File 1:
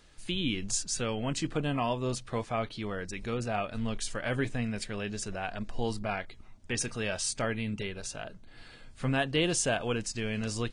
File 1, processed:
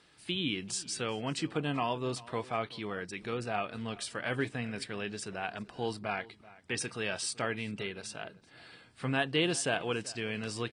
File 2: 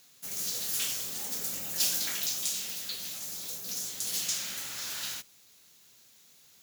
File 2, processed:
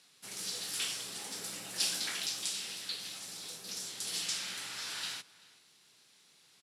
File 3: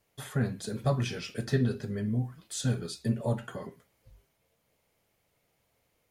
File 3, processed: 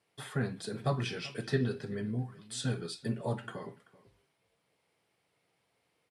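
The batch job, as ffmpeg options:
-filter_complex "[0:a]highpass=150,equalizer=f=230:t=q:w=4:g=-5,equalizer=f=580:t=q:w=4:g=-5,equalizer=f=6.6k:t=q:w=4:g=-10,lowpass=f=9.8k:w=0.5412,lowpass=f=9.8k:w=1.3066,asplit=2[a][b];[b]adelay=384.8,volume=-20dB,highshelf=f=4k:g=-8.66[c];[a][c]amix=inputs=2:normalize=0"

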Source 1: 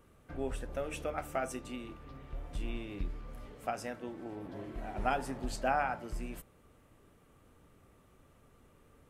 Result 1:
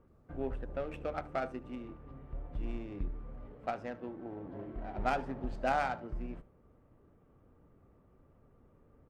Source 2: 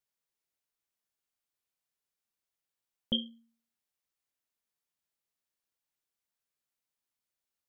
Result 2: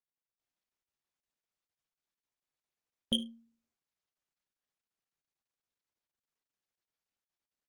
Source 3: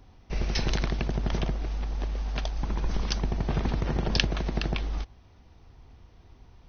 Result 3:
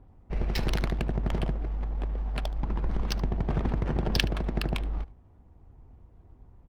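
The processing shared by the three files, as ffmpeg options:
-af "adynamicsmooth=sensitivity=5.5:basefreq=1.2k,aecho=1:1:74:0.1" -ar 48000 -c:a libopus -b:a 48k

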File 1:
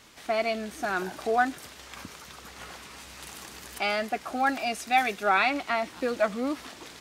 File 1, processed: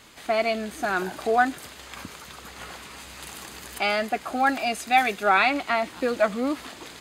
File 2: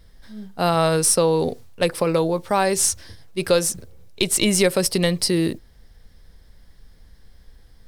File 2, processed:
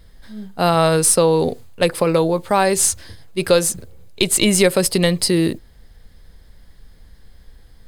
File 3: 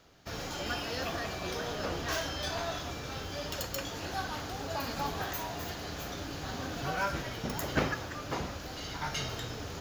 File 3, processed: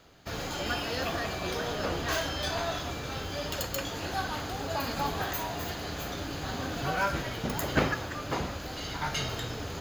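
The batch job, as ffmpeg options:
-af "bandreject=f=5.6k:w=7.9,volume=3.5dB"

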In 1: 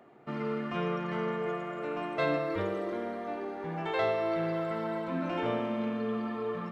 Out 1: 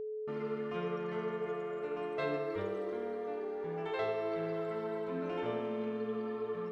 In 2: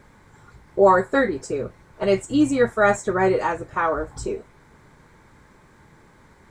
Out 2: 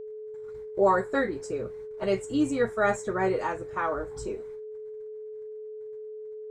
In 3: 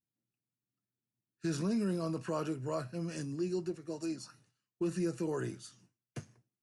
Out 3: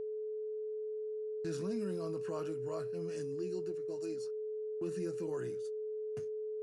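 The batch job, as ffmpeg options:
-af "agate=range=-28dB:threshold=-48dB:ratio=16:detection=peak,aeval=exprs='val(0)+0.0316*sin(2*PI*430*n/s)':c=same,volume=-7dB"

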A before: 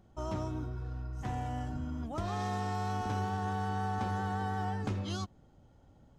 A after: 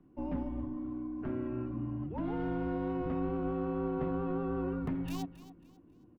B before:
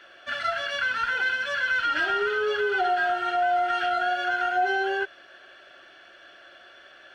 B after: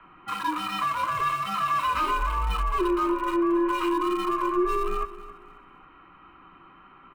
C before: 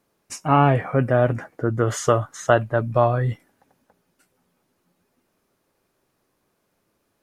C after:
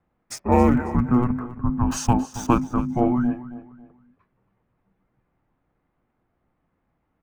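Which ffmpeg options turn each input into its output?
-filter_complex "[0:a]bandreject=f=590:w=12,afreqshift=-370,acrossover=split=680|2400[a][b][c];[c]aeval=exprs='val(0)*gte(abs(val(0)),0.00944)':c=same[d];[a][b][d]amix=inputs=3:normalize=0,aecho=1:1:272|544|816:0.168|0.0537|0.0172"

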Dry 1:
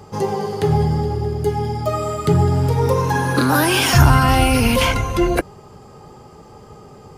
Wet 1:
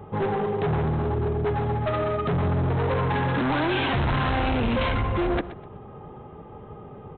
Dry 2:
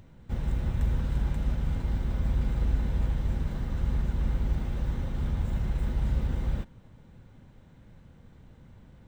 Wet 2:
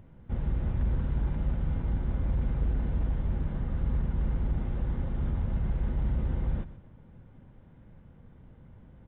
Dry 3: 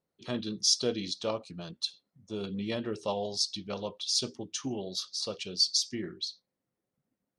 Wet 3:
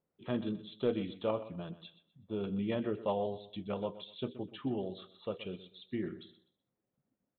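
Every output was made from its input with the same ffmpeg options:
-af "lowpass=f=1.5k:p=1,aresample=8000,volume=22dB,asoftclip=hard,volume=-22dB,aresample=44100,aecho=1:1:125|250|375:0.178|0.0498|0.0139"

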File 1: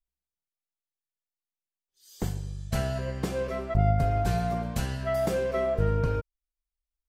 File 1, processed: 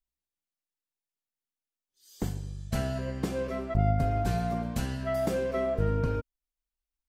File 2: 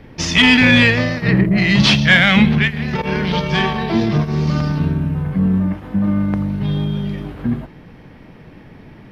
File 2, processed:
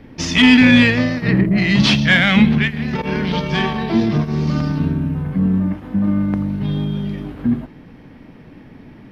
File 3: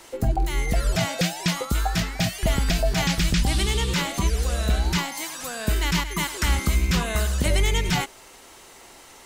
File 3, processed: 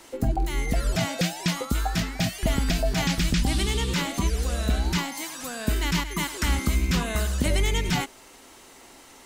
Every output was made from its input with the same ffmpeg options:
-af "equalizer=f=260:w=2.8:g=7,volume=-2.5dB"

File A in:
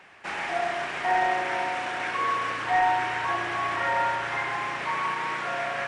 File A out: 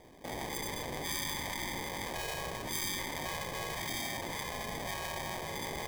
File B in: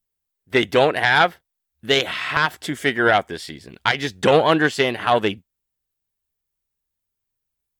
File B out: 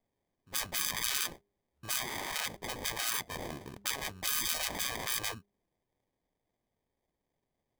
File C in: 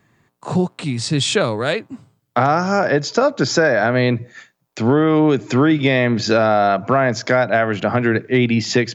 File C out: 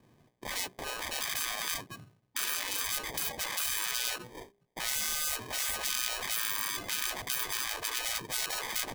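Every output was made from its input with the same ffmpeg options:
-af "acrusher=samples=32:mix=1:aa=0.000001,afftfilt=real='re*lt(hypot(re,im),0.112)':imag='im*lt(hypot(re,im),0.112)':win_size=1024:overlap=0.75,bandreject=f=201.5:t=h:w=4,bandreject=f=403:t=h:w=4,volume=-4dB"

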